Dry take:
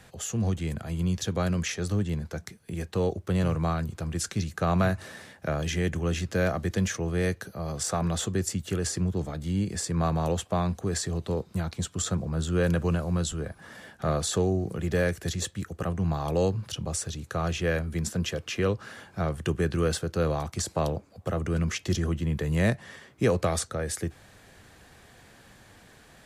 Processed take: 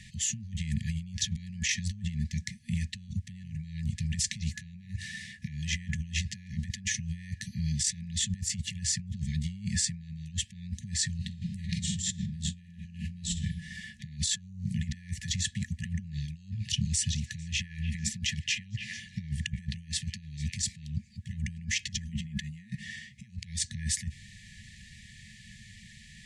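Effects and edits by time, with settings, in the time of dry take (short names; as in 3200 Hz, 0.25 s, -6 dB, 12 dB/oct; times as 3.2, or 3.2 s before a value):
11.16–13.37 reverb throw, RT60 0.82 s, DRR 1 dB
15.58–20.88 delay with a stepping band-pass 0.149 s, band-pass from 830 Hz, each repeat 1.4 oct, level -6.5 dB
22.05–22.85 comb 4.8 ms
whole clip: LPF 8700 Hz 24 dB/oct; negative-ratio compressor -32 dBFS, ratio -0.5; FFT band-reject 230–1700 Hz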